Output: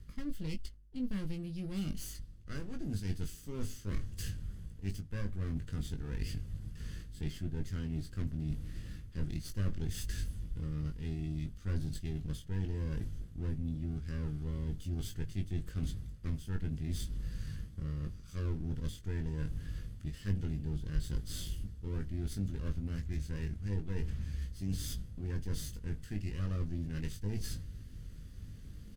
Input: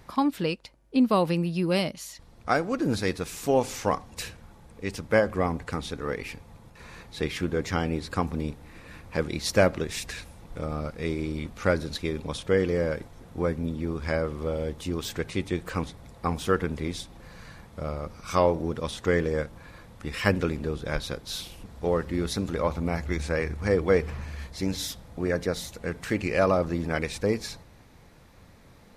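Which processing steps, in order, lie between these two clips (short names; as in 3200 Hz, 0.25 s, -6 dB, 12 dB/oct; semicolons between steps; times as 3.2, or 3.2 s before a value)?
minimum comb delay 0.64 ms; reverse; compressor 4:1, threshold -39 dBFS, peak gain reduction 19 dB; reverse; passive tone stack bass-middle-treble 10-0-1; doubler 20 ms -6 dB; gain +17.5 dB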